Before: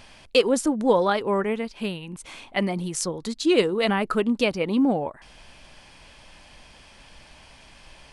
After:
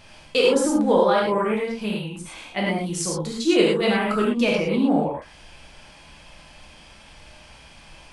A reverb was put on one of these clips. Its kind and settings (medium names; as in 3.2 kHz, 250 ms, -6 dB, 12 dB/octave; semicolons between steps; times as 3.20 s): gated-style reverb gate 140 ms flat, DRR -4 dB; trim -3 dB